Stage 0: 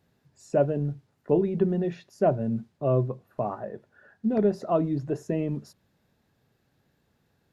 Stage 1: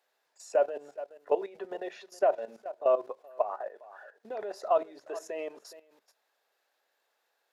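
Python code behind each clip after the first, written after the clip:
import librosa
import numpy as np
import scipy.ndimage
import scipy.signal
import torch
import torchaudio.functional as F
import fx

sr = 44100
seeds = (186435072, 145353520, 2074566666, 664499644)

y = scipy.signal.sosfilt(scipy.signal.butter(4, 550.0, 'highpass', fs=sr, output='sos'), x)
y = y + 10.0 ** (-18.5 / 20.0) * np.pad(y, (int(417 * sr / 1000.0), 0))[:len(y)]
y = fx.level_steps(y, sr, step_db=14)
y = y * librosa.db_to_amplitude(6.5)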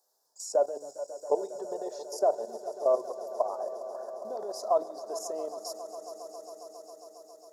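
y = fx.curve_eq(x, sr, hz=(1000.0, 2500.0, 5200.0), db=(0, -27, 10))
y = fx.echo_swell(y, sr, ms=136, loudest=5, wet_db=-17.5)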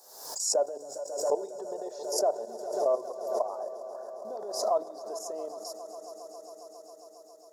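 y = fx.pre_swell(x, sr, db_per_s=62.0)
y = y * librosa.db_to_amplitude(-2.0)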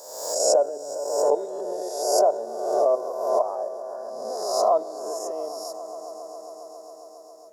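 y = fx.spec_swells(x, sr, rise_s=1.05)
y = fx.peak_eq(y, sr, hz=620.0, db=4.5, octaves=2.8)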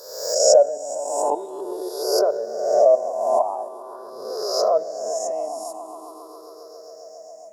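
y = fx.spec_ripple(x, sr, per_octave=0.59, drift_hz=0.45, depth_db=14)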